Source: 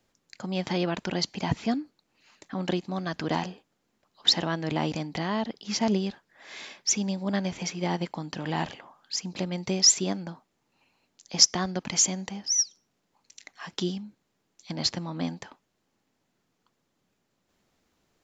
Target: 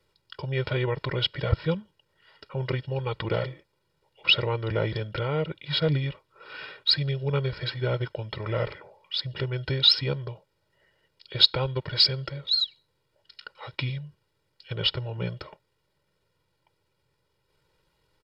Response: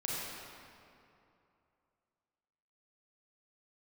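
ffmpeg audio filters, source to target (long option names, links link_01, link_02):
-af "asetrate=31183,aresample=44100,atempo=1.41421,aecho=1:1:2.1:0.88"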